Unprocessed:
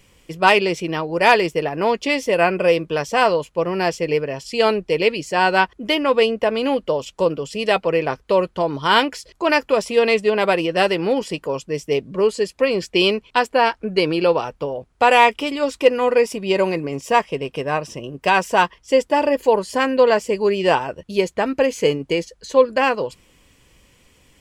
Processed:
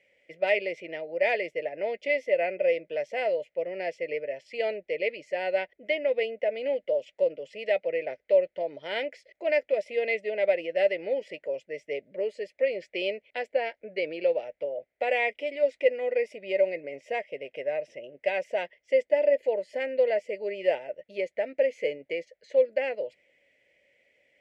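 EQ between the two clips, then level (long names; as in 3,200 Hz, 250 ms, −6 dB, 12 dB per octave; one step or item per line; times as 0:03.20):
dynamic equaliser 1,400 Hz, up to −5 dB, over −30 dBFS, Q 0.8
pair of resonant band-passes 1,100 Hz, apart 1.8 octaves
0.0 dB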